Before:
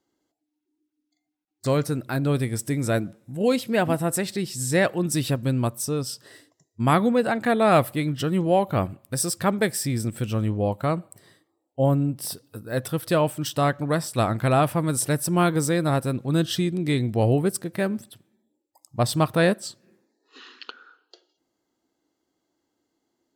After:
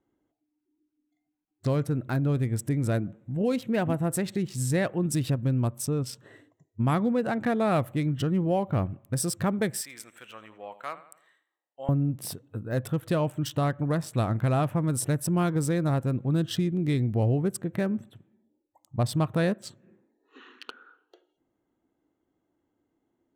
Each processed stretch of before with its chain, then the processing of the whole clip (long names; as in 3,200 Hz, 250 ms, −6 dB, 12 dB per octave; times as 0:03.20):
0:09.81–0:11.89: high-pass filter 1,300 Hz + repeating echo 83 ms, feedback 46%, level −14.5 dB
whole clip: adaptive Wiener filter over 9 samples; low-shelf EQ 210 Hz +9 dB; downward compressor 2 to 1, threshold −24 dBFS; level −2 dB